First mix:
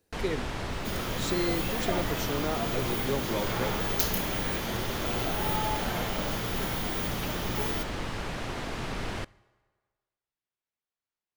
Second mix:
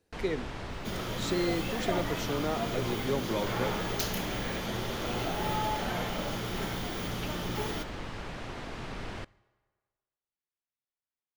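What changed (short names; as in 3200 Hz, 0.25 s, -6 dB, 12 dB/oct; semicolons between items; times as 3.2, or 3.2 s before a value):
first sound -5.0 dB; master: add high shelf 9500 Hz -11 dB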